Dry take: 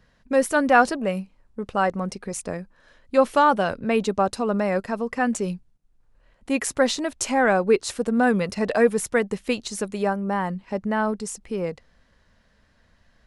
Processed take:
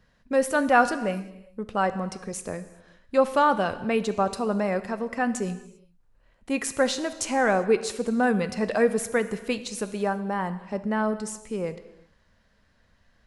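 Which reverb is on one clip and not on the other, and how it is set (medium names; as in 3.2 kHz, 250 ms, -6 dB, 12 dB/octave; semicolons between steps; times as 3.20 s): gated-style reverb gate 420 ms falling, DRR 11 dB; trim -3 dB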